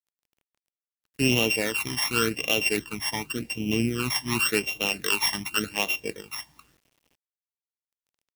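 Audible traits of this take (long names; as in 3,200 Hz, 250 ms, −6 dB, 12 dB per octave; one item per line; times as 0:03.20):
a buzz of ramps at a fixed pitch in blocks of 16 samples
phaser sweep stages 12, 0.89 Hz, lowest notch 440–1,600 Hz
a quantiser's noise floor 10 bits, dither none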